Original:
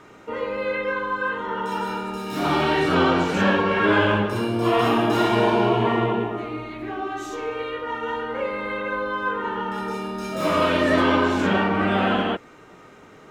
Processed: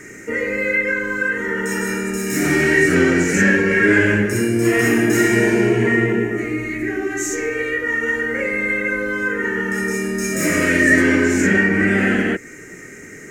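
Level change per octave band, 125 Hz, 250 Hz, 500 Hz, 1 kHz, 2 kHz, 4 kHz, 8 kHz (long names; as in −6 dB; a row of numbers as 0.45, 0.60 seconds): +5.0, +6.0, +3.0, −7.5, +10.0, −2.5, +18.0 decibels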